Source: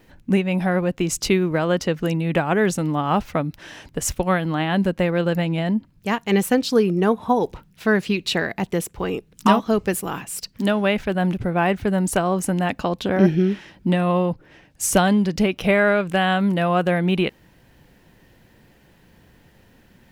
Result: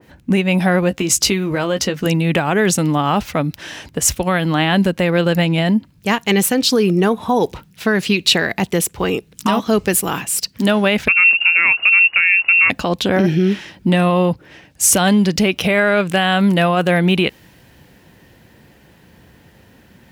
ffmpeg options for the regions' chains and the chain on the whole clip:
ffmpeg -i in.wav -filter_complex "[0:a]asettb=1/sr,asplit=3[link_01][link_02][link_03];[link_01]atrim=end=0.894[link_04];[link_02]atrim=start=0.89:end=2.06,asetpts=PTS-STARTPTS,afade=type=in:duration=0.004:curve=qsin,afade=type=out:start_time=1.166:duration=0.004:curve=qsin,acompressor=threshold=-21dB:ratio=4:attack=3.2:release=140:knee=1:detection=peak,asplit=2[link_05][link_06];[link_06]adelay=15,volume=-8dB[link_07];[link_05][link_07]amix=inputs=2:normalize=0,atrim=end_sample=51597[link_08];[link_03]atrim=start=2.056[link_09];[link_04][link_08]acrossfade=duration=0.004:curve1=hsin:curve2=qsin[link_10];[link_10][link_09]acrossfade=duration=0.004:curve1=qsin:curve2=hsin,asettb=1/sr,asplit=3[link_11][link_12][link_13];[link_11]atrim=end=11.084[link_14];[link_12]atrim=start=11.08:end=12.7,asetpts=PTS-STARTPTS,afade=type=in:duration=0.004:curve=qsin,afade=type=out:start_time=1.616:duration=0.004:curve=qsin,lowpass=frequency=2500:width_type=q:width=0.5098,lowpass=frequency=2500:width_type=q:width=0.6013,lowpass=frequency=2500:width_type=q:width=0.9,lowpass=frequency=2500:width_type=q:width=2.563,afreqshift=-2900,equalizer=frequency=800:width=0.39:gain=-2.5[link_15];[link_13]atrim=start=12.696[link_16];[link_14][link_15]acrossfade=duration=0.004:curve1=hsin:curve2=qsin[link_17];[link_17][link_16]acrossfade=duration=0.004:curve1=qsin:curve2=hsin,highpass=frequency=49:width=0.5412,highpass=frequency=49:width=1.3066,alimiter=limit=-13dB:level=0:latency=1:release=59,adynamicequalizer=threshold=0.0126:dfrequency=2000:dqfactor=0.7:tfrequency=2000:tqfactor=0.7:attack=5:release=100:ratio=0.375:range=3:mode=boostabove:tftype=highshelf,volume=6dB" out.wav

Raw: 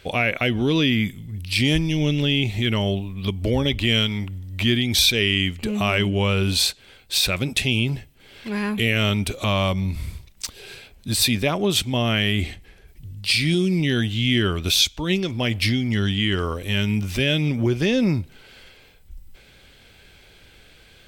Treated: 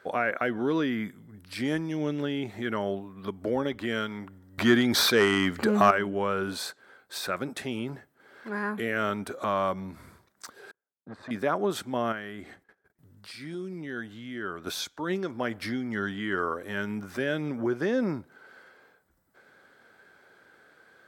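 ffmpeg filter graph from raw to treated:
ffmpeg -i in.wav -filter_complex "[0:a]asettb=1/sr,asplit=3[link_01][link_02][link_03];[link_01]atrim=end=4.584[link_04];[link_02]atrim=start=4.58:end=5.91,asetpts=PTS-STARTPTS,afade=type=in:duration=0.004:curve=qsin,afade=type=out:start_time=1.326:duration=0.004:curve=qsin,equalizer=frequency=4500:width=2.5:gain=5.5,acompressor=mode=upward:threshold=-21dB:ratio=2.5:attack=3.2:release=140:knee=2.83:detection=peak,aeval=exprs='0.708*sin(PI/2*1.78*val(0)/0.708)':channel_layout=same[link_05];[link_03]atrim=start=5.906[link_06];[link_04][link_05]acrossfade=duration=0.004:curve1=hsin:curve2=qsin[link_07];[link_07][link_06]acrossfade=duration=0.004:curve1=qsin:curve2=hsin,asettb=1/sr,asplit=3[link_08][link_09][link_10];[link_08]atrim=end=10.714[link_11];[link_09]atrim=start=10.71:end=11.31,asetpts=PTS-STARTPTS,afade=type=in:duration=0.004:curve=qsin,afade=type=out:start_time=0.596:duration=0.004:curve=qsin,agate=range=-36dB:threshold=-36dB:ratio=16:release=100:detection=peak,lowpass=1500,aeval=exprs='(tanh(17.8*val(0)+0.65)-tanh(0.65))/17.8':channel_layout=same[link_12];[link_10]atrim=start=11.306[link_13];[link_11][link_12]acrossfade=duration=0.004:curve1=hsin:curve2=qsin[link_14];[link_14][link_13]acrossfade=duration=0.004:curve1=qsin:curve2=hsin,asettb=1/sr,asplit=3[link_15][link_16][link_17];[link_15]atrim=end=12.124[link_18];[link_16]atrim=start=12.12:end=14.67,asetpts=PTS-STARTPTS,afade=type=in:duration=0.004:curve=qsin,afade=type=out:start_time=2.546:duration=0.004:curve=qsin,agate=range=-19dB:threshold=-47dB:ratio=16:release=100:detection=peak,acompressor=threshold=-31dB:ratio=2:attack=3.2:release=140:knee=1:detection=peak[link_19];[link_17]atrim=start=14.666[link_20];[link_18][link_19]acrossfade=duration=0.004:curve1=hsin:curve2=qsin[link_21];[link_21][link_20]acrossfade=duration=0.004:curve1=qsin:curve2=hsin,highpass=270,highshelf=frequency=2000:width_type=q:width=3:gain=-9.5,volume=-4dB" out.wav

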